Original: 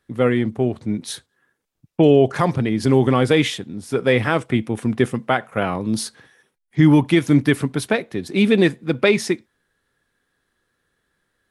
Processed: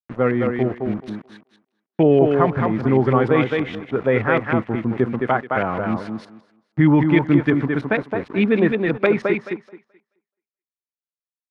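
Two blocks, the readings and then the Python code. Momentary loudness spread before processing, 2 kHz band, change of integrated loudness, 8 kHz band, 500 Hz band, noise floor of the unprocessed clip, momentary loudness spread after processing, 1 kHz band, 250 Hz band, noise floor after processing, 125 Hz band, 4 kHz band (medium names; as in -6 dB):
12 LU, -0.5 dB, -0.5 dB, under -25 dB, 0.0 dB, -75 dBFS, 11 LU, +2.0 dB, -0.5 dB, under -85 dBFS, -1.0 dB, -10.5 dB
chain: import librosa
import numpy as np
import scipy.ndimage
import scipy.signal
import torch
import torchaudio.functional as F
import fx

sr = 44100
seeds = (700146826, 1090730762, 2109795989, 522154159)

y = np.where(np.abs(x) >= 10.0 ** (-31.5 / 20.0), x, 0.0)
y = fx.echo_thinned(y, sr, ms=215, feedback_pct=21, hz=170.0, wet_db=-3.5)
y = fx.filter_lfo_lowpass(y, sr, shape='saw_up', hz=6.4, low_hz=990.0, high_hz=2400.0, q=1.4)
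y = y * librosa.db_to_amplitude(-2.0)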